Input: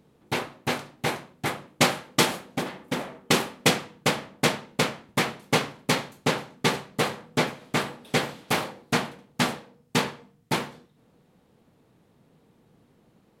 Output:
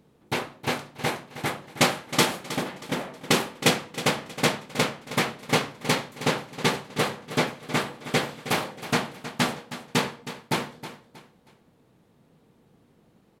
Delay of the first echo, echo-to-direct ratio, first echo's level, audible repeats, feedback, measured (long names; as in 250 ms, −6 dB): 317 ms, −12.5 dB, −13.0 dB, 3, 33%